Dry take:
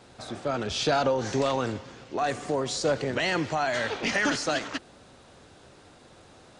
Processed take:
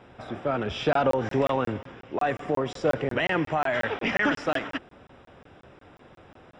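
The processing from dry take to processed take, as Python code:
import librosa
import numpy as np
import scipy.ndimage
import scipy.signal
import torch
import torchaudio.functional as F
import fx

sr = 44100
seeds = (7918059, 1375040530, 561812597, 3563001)

y = scipy.signal.savgol_filter(x, 25, 4, mode='constant')
y = fx.buffer_crackle(y, sr, first_s=0.93, period_s=0.18, block=1024, kind='zero')
y = F.gain(torch.from_numpy(y), 2.0).numpy()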